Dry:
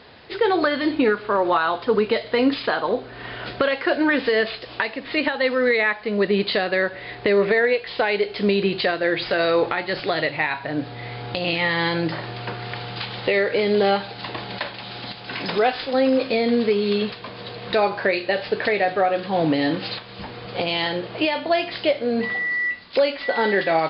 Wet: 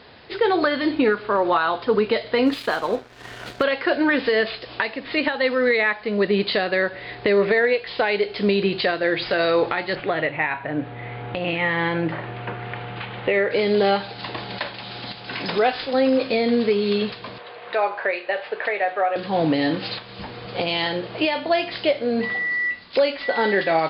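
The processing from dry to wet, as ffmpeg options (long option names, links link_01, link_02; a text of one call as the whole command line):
ffmpeg -i in.wav -filter_complex "[0:a]asplit=3[link_01][link_02][link_03];[link_01]afade=type=out:start_time=2.45:duration=0.02[link_04];[link_02]aeval=exprs='sgn(val(0))*max(abs(val(0))-0.0119,0)':channel_layout=same,afade=type=in:start_time=2.45:duration=0.02,afade=type=out:start_time=3.62:duration=0.02[link_05];[link_03]afade=type=in:start_time=3.62:duration=0.02[link_06];[link_04][link_05][link_06]amix=inputs=3:normalize=0,asettb=1/sr,asplit=3[link_07][link_08][link_09];[link_07]atrim=end=9.954[link_10];[link_08]atrim=start=9.95:end=13.51,asetpts=PTS-STARTPTS,afade=type=in:duration=0.004:curve=qsin,afade=type=out:start_time=3.556:duration=0.004:curve=qsin,lowpass=frequency=2800:width=0.5412,lowpass=frequency=2800:width=1.3066[link_11];[link_09]atrim=start=13.506[link_12];[link_10][link_11]acrossfade=duration=0.004:curve1=hsin:curve2=qsin[link_13];[link_13][link_12]acrossfade=duration=0.004:curve1=qsin:curve2=hsin,asettb=1/sr,asplit=3[link_14][link_15][link_16];[link_14]atrim=end=17.384[link_17];[link_15]atrim=start=17.38:end=19.16,asetpts=PTS-STARTPTS,afade=type=in:duration=0.004:curve=qsin,afade=type=out:start_time=1.776:duration=0.004:curve=qsin,acrossover=split=440 3000:gain=0.0794 1 0.0891[link_18][link_19][link_20];[link_18][link_19][link_20]amix=inputs=3:normalize=0[link_21];[link_16]atrim=start=19.156[link_22];[link_17][link_21]acrossfade=duration=0.004:curve1=hsin:curve2=qsin[link_23];[link_23][link_22]acrossfade=duration=0.004:curve1=qsin:curve2=hsin" out.wav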